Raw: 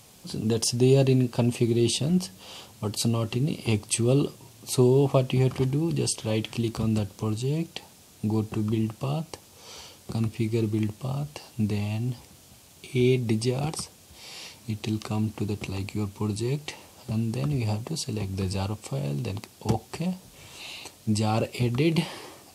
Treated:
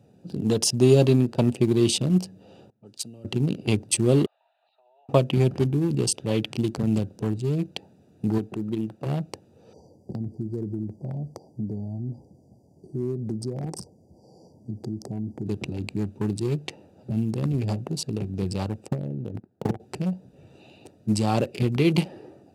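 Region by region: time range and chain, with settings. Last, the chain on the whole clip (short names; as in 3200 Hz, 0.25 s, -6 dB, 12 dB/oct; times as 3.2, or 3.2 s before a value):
2.7–3.25 low-pass opened by the level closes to 1100 Hz, open at -22.5 dBFS + HPF 110 Hz + pre-emphasis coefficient 0.9
4.26–5.09 Chebyshev band-pass 650–4100 Hz, order 5 + compressor 12:1, threshold -51 dBFS
8.38–9.06 low shelf 190 Hz -10.5 dB + mismatched tape noise reduction decoder only
9.73–15.46 brick-wall FIR band-stop 1100–4500 Hz + compressor 2.5:1, threshold -30 dBFS
18.88–19.8 median filter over 15 samples + compressor 5:1, threshold -30 dBFS + transient shaper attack +11 dB, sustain -12 dB
whole clip: Wiener smoothing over 41 samples; HPF 110 Hz; gain +3.5 dB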